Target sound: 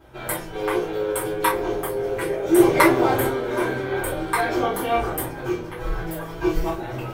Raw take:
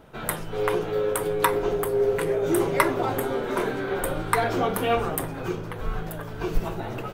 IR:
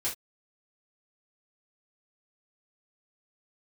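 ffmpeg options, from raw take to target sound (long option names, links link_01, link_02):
-filter_complex "[0:a]asplit=3[link_01][link_02][link_03];[link_01]afade=type=out:start_time=2.54:duration=0.02[link_04];[link_02]acontrast=23,afade=type=in:start_time=2.54:duration=0.02,afade=type=out:start_time=3.28:duration=0.02[link_05];[link_03]afade=type=in:start_time=3.28:duration=0.02[link_06];[link_04][link_05][link_06]amix=inputs=3:normalize=0,asettb=1/sr,asplit=3[link_07][link_08][link_09];[link_07]atrim=end=4.644[link_10];[link_08]atrim=start=4.64:end=5.07,asetpts=PTS-STARTPTS,afade=type=in:duration=0.004:curve=qsin,afade=type=out:start_time=0.426:duration=0.004:curve=qsin,bandreject=frequency=2500:width=7.1[link_11];[link_09]atrim=start=5.066[link_12];[link_10][link_11]acrossfade=duration=0.004:curve1=hsin:curve2=qsin[link_13];[link_13][link_12]acrossfade=duration=0.004:curve1=qsin:curve2=hsin,asettb=1/sr,asplit=3[link_14][link_15][link_16];[link_14]atrim=end=5.784[link_17];[link_15]atrim=start=5.78:end=6.7,asetpts=PTS-STARTPTS,afade=type=in:duration=0.004:curve=qsin,afade=type=out:start_time=0.916:duration=0.004:curve=qsin,aecho=1:1:6.1:0.87,atrim=end_sample=40572[link_18];[link_16]atrim=start=6.696[link_19];[link_17][link_18]acrossfade=duration=0.004:curve1=hsin:curve2=qsin[link_20];[link_20][link_19]acrossfade=duration=0.004:curve1=qsin:curve2=hsin[link_21];[1:a]atrim=start_sample=2205,atrim=end_sample=3087[link_22];[link_21][link_22]afir=irnorm=-1:irlink=0,volume=-2.5dB"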